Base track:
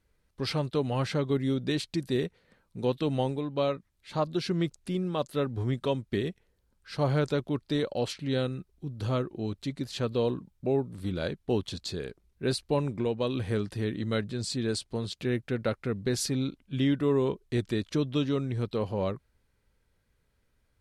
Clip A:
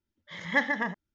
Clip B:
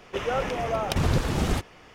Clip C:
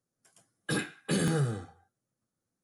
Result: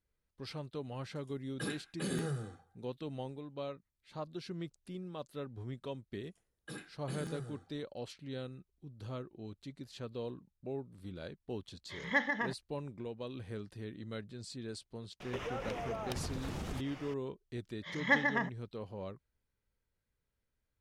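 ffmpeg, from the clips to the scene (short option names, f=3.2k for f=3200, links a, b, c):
-filter_complex "[3:a]asplit=2[a][b];[1:a]asplit=2[c][d];[0:a]volume=-13.5dB[e];[c]agate=range=-33dB:threshold=-47dB:ratio=3:release=100:detection=peak[f];[2:a]acompressor=threshold=-37dB:ratio=8:attack=8.6:release=202:knee=1:detection=peak[g];[a]atrim=end=2.63,asetpts=PTS-STARTPTS,volume=-9dB,afade=t=in:d=0.004:c=hsin,afade=t=out:st=2.626:d=0.004:c=hsin,adelay=910[h];[b]atrim=end=2.63,asetpts=PTS-STARTPTS,volume=-15.5dB,afade=t=in:d=0.004:c=hsin,afade=t=out:st=2.626:d=0.004:c=hsin,adelay=5990[i];[f]atrim=end=1.14,asetpts=PTS-STARTPTS,volume=-5.5dB,afade=t=in:d=0.004:c=hsin,afade=t=out:st=1.136:d=0.004:c=hsin,adelay=11590[j];[g]atrim=end=1.94,asetpts=PTS-STARTPTS,volume=-0.5dB,afade=t=in:d=0.004:c=hsin,afade=t=out:st=1.936:d=0.004:c=hsin,adelay=15200[k];[d]atrim=end=1.14,asetpts=PTS-STARTPTS,volume=-3dB,afade=t=in:d=0.004:c=hsin,afade=t=out:st=1.136:d=0.004:c=hsin,adelay=17550[l];[e][h][i][j][k][l]amix=inputs=6:normalize=0"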